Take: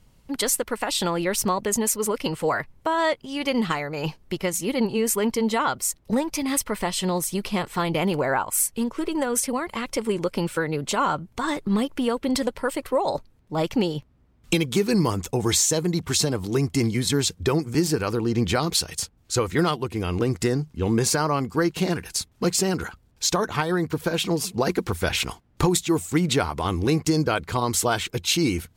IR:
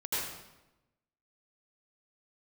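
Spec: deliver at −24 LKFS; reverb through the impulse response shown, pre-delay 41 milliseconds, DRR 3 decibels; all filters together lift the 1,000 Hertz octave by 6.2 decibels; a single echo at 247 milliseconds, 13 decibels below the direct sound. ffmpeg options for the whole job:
-filter_complex "[0:a]equalizer=frequency=1000:width_type=o:gain=7.5,aecho=1:1:247:0.224,asplit=2[link_01][link_02];[1:a]atrim=start_sample=2205,adelay=41[link_03];[link_02][link_03]afir=irnorm=-1:irlink=0,volume=-9.5dB[link_04];[link_01][link_04]amix=inputs=2:normalize=0,volume=-3.5dB"

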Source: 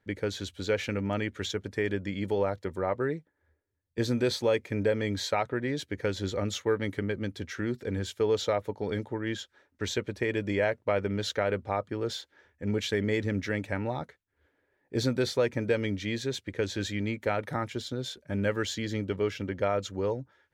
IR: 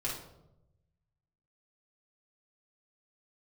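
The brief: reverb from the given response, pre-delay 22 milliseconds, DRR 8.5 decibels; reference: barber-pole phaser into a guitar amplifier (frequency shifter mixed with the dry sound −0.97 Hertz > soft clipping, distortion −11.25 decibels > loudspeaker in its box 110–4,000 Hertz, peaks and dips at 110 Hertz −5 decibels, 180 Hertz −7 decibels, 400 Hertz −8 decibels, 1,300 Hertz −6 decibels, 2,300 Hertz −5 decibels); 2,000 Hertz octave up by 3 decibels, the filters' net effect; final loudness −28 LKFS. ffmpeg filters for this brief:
-filter_complex "[0:a]equalizer=frequency=2000:width_type=o:gain=7,asplit=2[link_01][link_02];[1:a]atrim=start_sample=2205,adelay=22[link_03];[link_02][link_03]afir=irnorm=-1:irlink=0,volume=-12dB[link_04];[link_01][link_04]amix=inputs=2:normalize=0,asplit=2[link_05][link_06];[link_06]afreqshift=-0.97[link_07];[link_05][link_07]amix=inputs=2:normalize=1,asoftclip=threshold=-26.5dB,highpass=110,equalizer=frequency=110:width_type=q:width=4:gain=-5,equalizer=frequency=180:width_type=q:width=4:gain=-7,equalizer=frequency=400:width_type=q:width=4:gain=-8,equalizer=frequency=1300:width_type=q:width=4:gain=-6,equalizer=frequency=2300:width_type=q:width=4:gain=-5,lowpass=frequency=4000:width=0.5412,lowpass=frequency=4000:width=1.3066,volume=10.5dB"

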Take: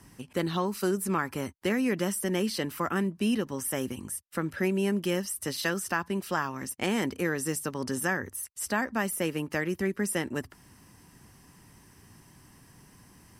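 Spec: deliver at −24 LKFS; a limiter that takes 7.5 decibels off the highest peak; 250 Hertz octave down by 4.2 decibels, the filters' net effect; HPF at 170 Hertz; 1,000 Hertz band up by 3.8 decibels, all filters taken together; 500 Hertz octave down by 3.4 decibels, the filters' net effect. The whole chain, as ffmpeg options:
ffmpeg -i in.wav -af "highpass=170,equalizer=frequency=250:width_type=o:gain=-3,equalizer=frequency=500:width_type=o:gain=-4.5,equalizer=frequency=1000:width_type=o:gain=6,volume=9dB,alimiter=limit=-10.5dB:level=0:latency=1" out.wav

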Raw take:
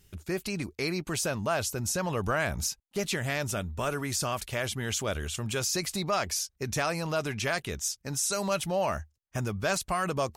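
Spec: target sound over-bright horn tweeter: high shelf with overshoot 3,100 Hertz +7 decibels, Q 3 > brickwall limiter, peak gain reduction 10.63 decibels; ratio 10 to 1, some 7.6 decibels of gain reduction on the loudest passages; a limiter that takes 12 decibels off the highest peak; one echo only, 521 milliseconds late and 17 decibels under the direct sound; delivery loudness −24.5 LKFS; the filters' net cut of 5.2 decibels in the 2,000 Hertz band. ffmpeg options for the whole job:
ffmpeg -i in.wav -af "equalizer=frequency=2000:width_type=o:gain=-3,acompressor=threshold=-32dB:ratio=10,alimiter=level_in=10.5dB:limit=-24dB:level=0:latency=1,volume=-10.5dB,highshelf=frequency=3100:width_type=q:width=3:gain=7,aecho=1:1:521:0.141,volume=19.5dB,alimiter=limit=-15.5dB:level=0:latency=1" out.wav

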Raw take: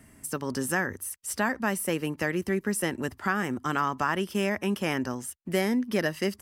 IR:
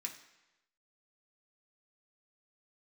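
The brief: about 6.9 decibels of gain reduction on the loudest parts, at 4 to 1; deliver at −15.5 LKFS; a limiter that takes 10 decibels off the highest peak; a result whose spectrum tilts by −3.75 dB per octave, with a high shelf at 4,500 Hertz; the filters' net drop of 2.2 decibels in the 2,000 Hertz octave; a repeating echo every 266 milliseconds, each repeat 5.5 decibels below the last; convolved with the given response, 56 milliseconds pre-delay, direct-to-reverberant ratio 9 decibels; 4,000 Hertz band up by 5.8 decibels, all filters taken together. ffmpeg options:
-filter_complex "[0:a]equalizer=frequency=2000:width_type=o:gain=-5.5,equalizer=frequency=4000:width_type=o:gain=7,highshelf=frequency=4500:gain=7.5,acompressor=threshold=-30dB:ratio=4,alimiter=level_in=3.5dB:limit=-24dB:level=0:latency=1,volume=-3.5dB,aecho=1:1:266|532|798|1064|1330|1596|1862:0.531|0.281|0.149|0.079|0.0419|0.0222|0.0118,asplit=2[link_01][link_02];[1:a]atrim=start_sample=2205,adelay=56[link_03];[link_02][link_03]afir=irnorm=-1:irlink=0,volume=-7dB[link_04];[link_01][link_04]amix=inputs=2:normalize=0,volume=20.5dB"

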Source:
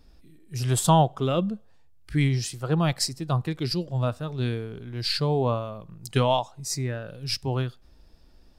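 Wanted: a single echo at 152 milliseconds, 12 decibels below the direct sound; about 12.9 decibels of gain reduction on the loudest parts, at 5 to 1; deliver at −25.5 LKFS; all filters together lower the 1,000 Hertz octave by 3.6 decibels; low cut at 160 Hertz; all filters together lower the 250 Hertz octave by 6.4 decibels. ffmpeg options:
ffmpeg -i in.wav -af "highpass=160,equalizer=frequency=250:width_type=o:gain=-7.5,equalizer=frequency=1000:width_type=o:gain=-4,acompressor=threshold=-32dB:ratio=5,aecho=1:1:152:0.251,volume=11dB" out.wav

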